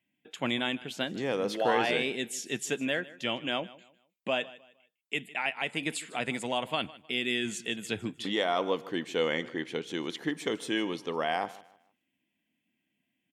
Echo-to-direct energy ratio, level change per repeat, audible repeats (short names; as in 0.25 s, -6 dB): -19.0 dB, -10.0 dB, 2